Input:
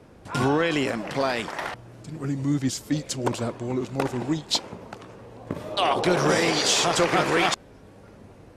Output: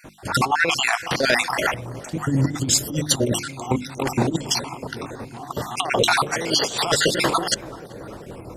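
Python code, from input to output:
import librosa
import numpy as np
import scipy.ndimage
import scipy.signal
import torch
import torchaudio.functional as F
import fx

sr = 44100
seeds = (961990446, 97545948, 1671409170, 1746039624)

p1 = fx.spec_dropout(x, sr, seeds[0], share_pct=51)
p2 = fx.high_shelf(p1, sr, hz=8400.0, db=9.0)
p3 = fx.over_compress(p2, sr, threshold_db=-28.0, ratio=-0.5)
p4 = fx.hum_notches(p3, sr, base_hz=50, count=7)
p5 = p4 + fx.echo_filtered(p4, sr, ms=383, feedback_pct=85, hz=940.0, wet_db=-17, dry=0)
y = p5 * 10.0 ** (9.0 / 20.0)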